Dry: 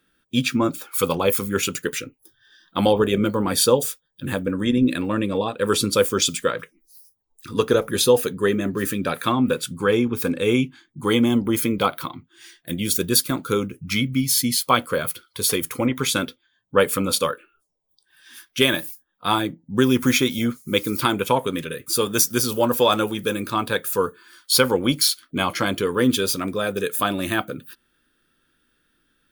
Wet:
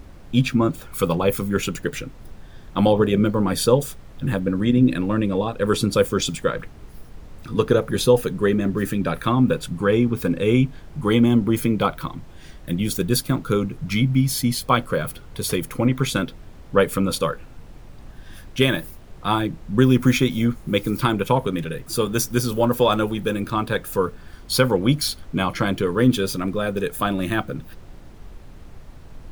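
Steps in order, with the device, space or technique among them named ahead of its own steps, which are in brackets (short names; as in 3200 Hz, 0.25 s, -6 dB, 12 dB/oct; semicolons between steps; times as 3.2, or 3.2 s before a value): car interior (bell 140 Hz +8.5 dB 0.87 oct; high shelf 3300 Hz -7.5 dB; brown noise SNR 17 dB)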